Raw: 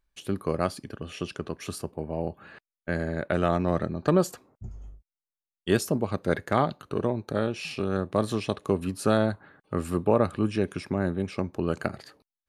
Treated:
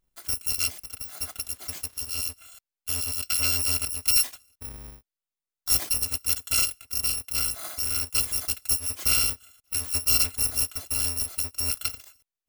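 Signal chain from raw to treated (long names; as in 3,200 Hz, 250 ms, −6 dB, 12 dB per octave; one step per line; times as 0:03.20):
samples in bit-reversed order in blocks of 256 samples
0:01.02–0:02.15: surface crackle 550 per second −45 dBFS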